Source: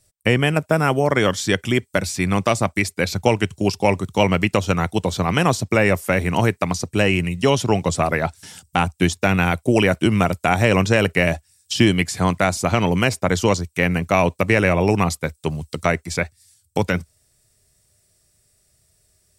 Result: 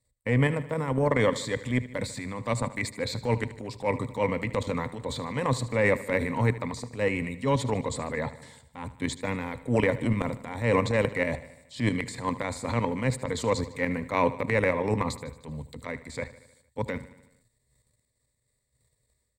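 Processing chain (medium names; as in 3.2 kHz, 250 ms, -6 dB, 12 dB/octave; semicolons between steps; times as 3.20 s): rippled EQ curve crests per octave 1, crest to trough 13 dB; in parallel at -8.5 dB: saturation -15 dBFS, distortion -8 dB; on the sum: level held to a coarse grid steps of 14 dB; transient shaper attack -9 dB, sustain +6 dB; treble shelf 3.9 kHz -10.5 dB; on a send: feedback delay 76 ms, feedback 59%, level -16 dB; on the sum: trim -6 dB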